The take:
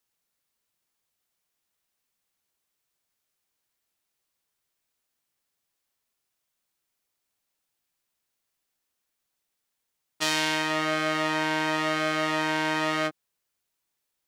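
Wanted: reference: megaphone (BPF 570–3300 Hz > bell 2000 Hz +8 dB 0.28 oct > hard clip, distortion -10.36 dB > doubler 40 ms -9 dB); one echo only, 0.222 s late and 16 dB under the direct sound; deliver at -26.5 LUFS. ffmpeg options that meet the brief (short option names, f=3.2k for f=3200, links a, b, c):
-filter_complex "[0:a]highpass=570,lowpass=3.3k,equalizer=f=2k:t=o:w=0.28:g=8,aecho=1:1:222:0.158,asoftclip=type=hard:threshold=-23dB,asplit=2[a][b];[b]adelay=40,volume=-9dB[c];[a][c]amix=inputs=2:normalize=0,volume=1dB"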